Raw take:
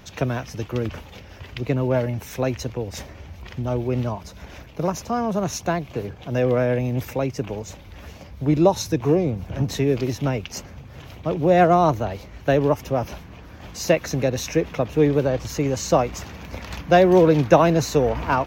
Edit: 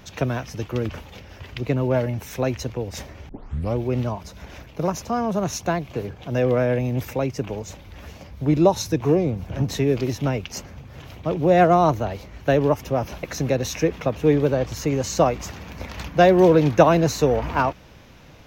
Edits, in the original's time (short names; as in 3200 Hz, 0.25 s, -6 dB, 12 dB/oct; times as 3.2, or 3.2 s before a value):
3.29 tape start 0.46 s
13.23–13.96 cut